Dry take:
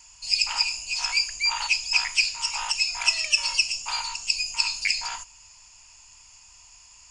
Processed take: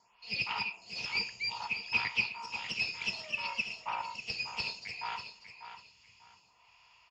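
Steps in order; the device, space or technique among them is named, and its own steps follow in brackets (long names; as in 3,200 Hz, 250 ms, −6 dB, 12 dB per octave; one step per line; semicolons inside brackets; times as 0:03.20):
0:03.47–0:04.10: octave-band graphic EQ 500/4,000/8,000 Hz +6/−11/+6 dB
vibe pedal into a guitar amplifier (phaser with staggered stages 0.62 Hz; tube saturation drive 20 dB, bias 0.45; loudspeaker in its box 110–4,000 Hz, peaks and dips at 120 Hz +5 dB, 200 Hz +4 dB, 290 Hz −5 dB, 460 Hz +5 dB, 1,600 Hz −6 dB)
repeating echo 593 ms, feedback 25%, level −10 dB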